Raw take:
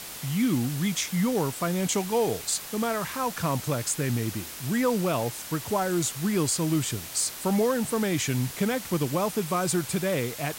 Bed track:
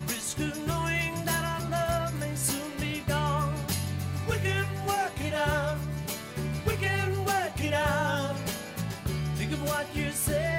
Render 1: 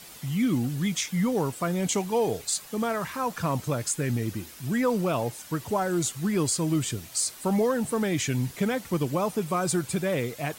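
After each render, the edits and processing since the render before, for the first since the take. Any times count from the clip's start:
broadband denoise 9 dB, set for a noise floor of −40 dBFS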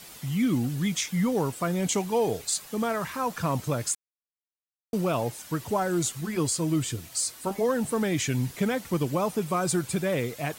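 0:03.95–0:04.93: silence
0:06.21–0:07.69: notch comb filter 200 Hz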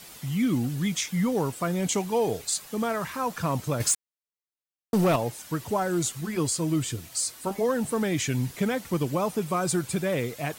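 0:03.80–0:05.16: leveller curve on the samples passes 2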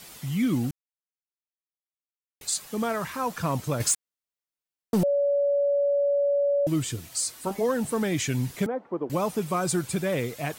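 0:00.71–0:02.41: silence
0:05.03–0:06.67: beep over 568 Hz −20 dBFS
0:08.66–0:09.10: flat-topped band-pass 560 Hz, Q 0.73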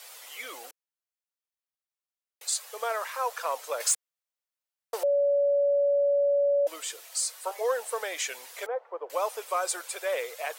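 elliptic high-pass filter 490 Hz, stop band 60 dB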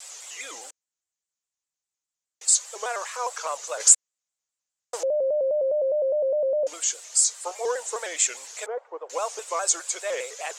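low-pass with resonance 7,100 Hz, resonance Q 5.5
pitch modulation by a square or saw wave square 4.9 Hz, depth 100 cents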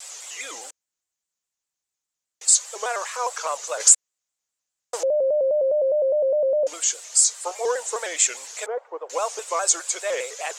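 level +3 dB
brickwall limiter −3 dBFS, peak gain reduction 2 dB

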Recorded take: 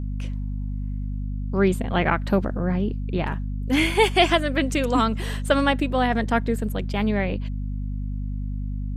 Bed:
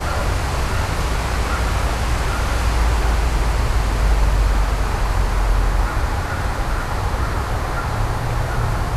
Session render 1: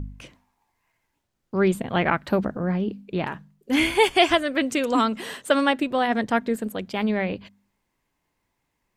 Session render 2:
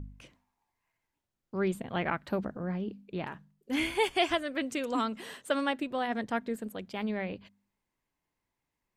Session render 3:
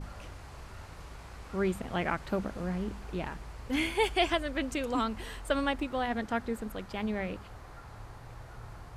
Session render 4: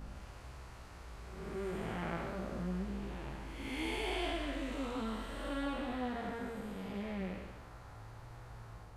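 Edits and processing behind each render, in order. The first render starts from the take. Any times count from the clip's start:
hum removal 50 Hz, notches 5
level −9.5 dB
mix in bed −26 dB
spectrum smeared in time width 355 ms; chorus effect 0.3 Hz, delay 15 ms, depth 3.4 ms

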